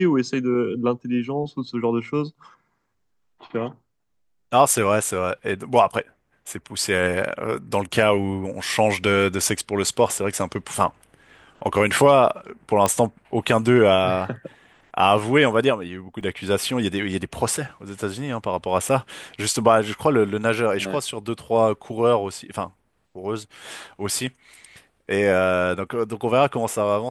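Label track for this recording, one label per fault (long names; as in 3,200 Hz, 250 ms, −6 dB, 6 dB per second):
12.860000	12.860000	click −7 dBFS
16.210000	16.210000	drop-out 3.1 ms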